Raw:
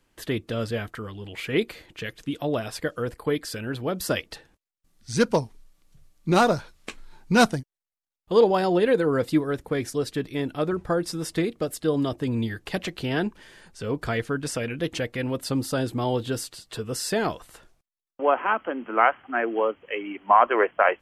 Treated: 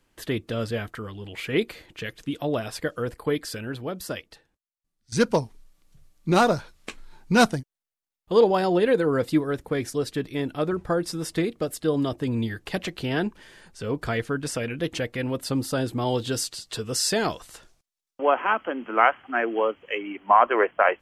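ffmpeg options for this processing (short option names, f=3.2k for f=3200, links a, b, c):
-filter_complex "[0:a]asettb=1/sr,asplit=3[a][b][c];[a]atrim=end=16.064[d];[b]atrim=start=16.06:end=19.98,asetpts=PTS-STARTPTS,afade=t=in:d=0.004:c=qsin,afade=t=out:st=3.916:d=0.004:c=qsin,equalizer=f=5.8k:t=o:w=1.7:g=7.5[e];[c]atrim=start=19.976[f];[d][e]acrossfade=d=0.004:c1=hsin:c2=qsin[g];[g][f]acrossfade=d=0.004:c1=qsin:c2=hsin,asplit=2[h][i];[h]atrim=end=5.12,asetpts=PTS-STARTPTS,afade=t=out:st=3.49:d=1.63:c=qua:silence=0.133352[j];[i]atrim=start=5.12,asetpts=PTS-STARTPTS,afade=t=in:d=0.004:c=hsin:silence=0.133352[k];[j][k]concat=n=2:v=0:a=1"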